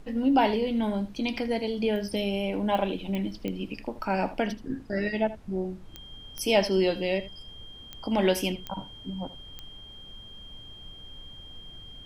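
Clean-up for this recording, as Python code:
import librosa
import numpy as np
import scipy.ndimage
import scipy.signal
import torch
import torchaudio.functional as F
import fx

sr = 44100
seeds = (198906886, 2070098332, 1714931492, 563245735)

y = fx.fix_declick_ar(x, sr, threshold=10.0)
y = fx.notch(y, sr, hz=3200.0, q=30.0)
y = fx.noise_reduce(y, sr, print_start_s=9.84, print_end_s=10.34, reduce_db=27.0)
y = fx.fix_echo_inverse(y, sr, delay_ms=79, level_db=-15.5)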